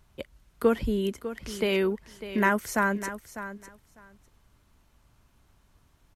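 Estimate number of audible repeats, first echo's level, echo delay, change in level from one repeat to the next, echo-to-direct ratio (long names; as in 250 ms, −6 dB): 2, −12.5 dB, 600 ms, −16.5 dB, −12.5 dB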